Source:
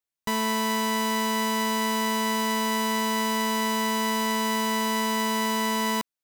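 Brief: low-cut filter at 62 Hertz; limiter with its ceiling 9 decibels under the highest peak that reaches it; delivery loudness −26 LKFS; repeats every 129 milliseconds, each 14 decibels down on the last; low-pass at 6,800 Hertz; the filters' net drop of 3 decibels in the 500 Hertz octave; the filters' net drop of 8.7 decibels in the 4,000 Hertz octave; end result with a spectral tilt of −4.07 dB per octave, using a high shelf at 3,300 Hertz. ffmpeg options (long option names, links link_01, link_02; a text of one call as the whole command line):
ffmpeg -i in.wav -af "highpass=62,lowpass=6800,equalizer=frequency=500:width_type=o:gain=-3.5,highshelf=frequency=3300:gain=-6.5,equalizer=frequency=4000:width_type=o:gain=-7.5,alimiter=level_in=4dB:limit=-24dB:level=0:latency=1,volume=-4dB,aecho=1:1:129|258:0.2|0.0399,volume=10dB" out.wav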